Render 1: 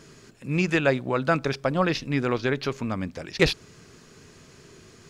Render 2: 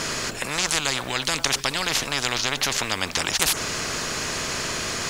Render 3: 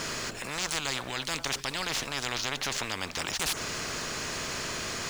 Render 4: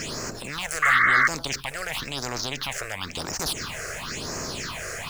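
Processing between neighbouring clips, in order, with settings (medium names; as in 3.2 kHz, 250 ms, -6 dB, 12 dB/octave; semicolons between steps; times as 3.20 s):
spectrum-flattening compressor 10:1; trim +6.5 dB
median filter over 3 samples; transient shaper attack -6 dB, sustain -1 dB; trim -6 dB
phase shifter stages 6, 0.97 Hz, lowest notch 240–3400 Hz; painted sound noise, 0.82–1.28 s, 1.1–2.2 kHz -23 dBFS; trim +4.5 dB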